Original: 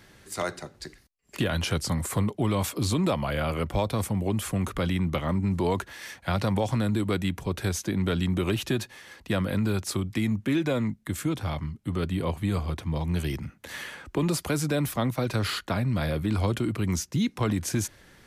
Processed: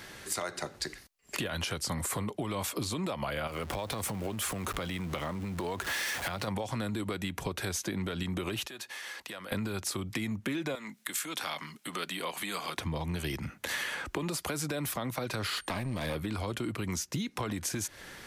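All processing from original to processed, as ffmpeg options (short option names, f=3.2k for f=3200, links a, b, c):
-filter_complex "[0:a]asettb=1/sr,asplit=3[a][b][c];[a]atrim=end=3.474[d];[b]atrim=start=3.47:end=6.48,asetpts=PTS-STARTPTS,afade=t=in:d=0.004:c=qsin,afade=t=out:st=3.006:d=0.004:c=qsin,aeval=exprs='val(0)+0.5*0.0133*sgn(val(0))':c=same,acompressor=threshold=-34dB:ratio=6:attack=3.2:release=140:knee=1:detection=peak[e];[c]atrim=start=6.476[f];[d][e]acrossfade=d=0.004:c1=hsin:c2=qsin[g];[g][f]acrossfade=d=0.004:c1=qsin:c2=hsin,asettb=1/sr,asplit=3[h][i][j];[h]atrim=end=8.674[k];[i]atrim=start=8.67:end=9.52,asetpts=PTS-STARTPTS,afade=t=in:d=0.004:c=qsin,afade=t=out:st=0.846:d=0.004:c=qsin,highpass=f=250:p=1,lowshelf=f=420:g=-8.5,acompressor=threshold=-46dB:ratio=8:attack=3.2:release=140:knee=1:detection=peak[l];[j]atrim=start=9.516[m];[k][l]acrossfade=d=0.004:c1=hsin:c2=qsin[n];[n][m]acrossfade=d=0.004:c1=qsin:c2=hsin,asettb=1/sr,asplit=3[o][p][q];[o]atrim=end=10.754[r];[p]atrim=start=10.75:end=12.78,asetpts=PTS-STARTPTS,afade=t=in:d=0.004:c=qsin,afade=t=out:st=2.026:d=0.004:c=qsin,highpass=f=170:w=0.5412,highpass=f=170:w=1.3066,acompressor=threshold=-42dB:ratio=2:attack=3.2:release=140:knee=1:detection=peak,tiltshelf=f=790:g=-7.5[s];[q]atrim=start=12.776[t];[r][s]acrossfade=d=0.004:c1=hsin:c2=qsin[u];[u][t]acrossfade=d=0.004:c1=qsin:c2=hsin,asettb=1/sr,asplit=3[v][w][x];[v]atrim=end=15.564[y];[w]atrim=start=15.56:end=16.15,asetpts=PTS-STARTPTS,afade=t=in:d=0.004:c=qsin,afade=t=out:st=0.586:d=0.004:c=qsin,aeval=exprs='val(0)+0.00141*sin(2*PI*8800*n/s)':c=same,aeval=exprs='clip(val(0),-1,0.0335)':c=same,bandreject=f=1.4k:w=7.9[z];[x]atrim=start=16.146[aa];[y][z]acrossfade=d=0.004:c1=hsin:c2=qsin[ab];[ab][aa]acrossfade=d=0.004:c1=qsin:c2=hsin,lowshelf=f=310:g=-9,alimiter=level_in=1dB:limit=-24dB:level=0:latency=1:release=163,volume=-1dB,acompressor=threshold=-40dB:ratio=6,volume=9dB"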